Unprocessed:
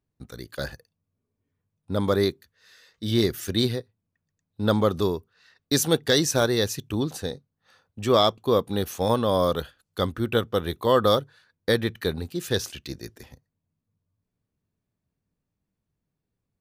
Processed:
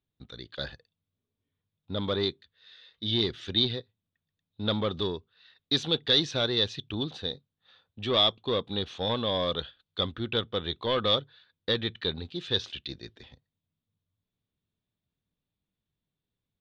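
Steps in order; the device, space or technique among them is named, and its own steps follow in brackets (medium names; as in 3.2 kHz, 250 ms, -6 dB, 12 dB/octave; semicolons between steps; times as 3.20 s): overdriven synthesiser ladder filter (saturation -14.5 dBFS, distortion -15 dB; four-pole ladder low-pass 3.9 kHz, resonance 70%); trim +5.5 dB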